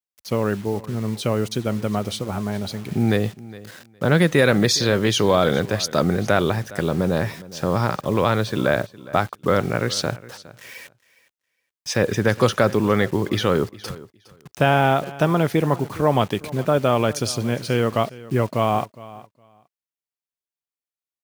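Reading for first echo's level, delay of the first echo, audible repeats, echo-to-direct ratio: -19.0 dB, 412 ms, 2, -19.0 dB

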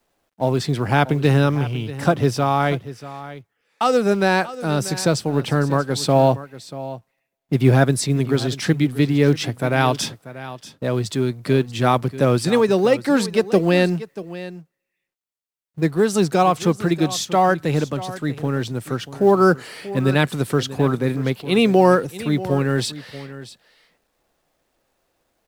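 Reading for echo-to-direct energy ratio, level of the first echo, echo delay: -15.5 dB, -15.5 dB, 637 ms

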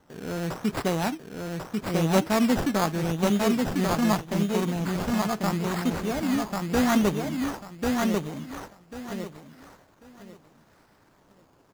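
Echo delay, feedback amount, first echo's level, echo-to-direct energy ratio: 1093 ms, 23%, -3.0 dB, -3.0 dB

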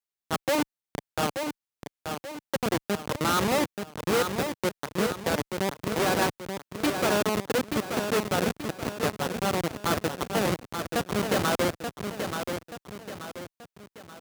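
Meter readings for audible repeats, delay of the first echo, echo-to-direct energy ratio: 3, 881 ms, -5.5 dB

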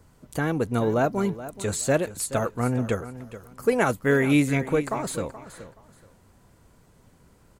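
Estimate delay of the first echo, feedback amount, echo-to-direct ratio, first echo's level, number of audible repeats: 426 ms, 23%, -14.5 dB, -14.5 dB, 2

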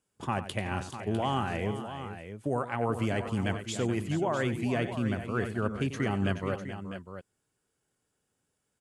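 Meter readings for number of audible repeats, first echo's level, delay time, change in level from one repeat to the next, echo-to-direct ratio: 3, -12.5 dB, 92 ms, no regular repeats, -7.0 dB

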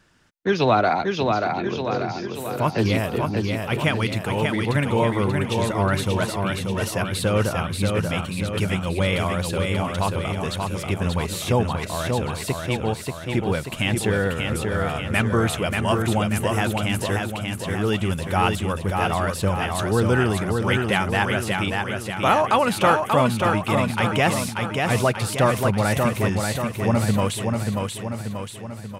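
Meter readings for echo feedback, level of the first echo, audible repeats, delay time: 55%, -4.0 dB, 6, 585 ms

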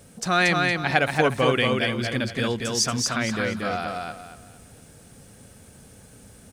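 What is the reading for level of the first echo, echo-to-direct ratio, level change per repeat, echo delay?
-3.0 dB, -2.5 dB, -10.5 dB, 232 ms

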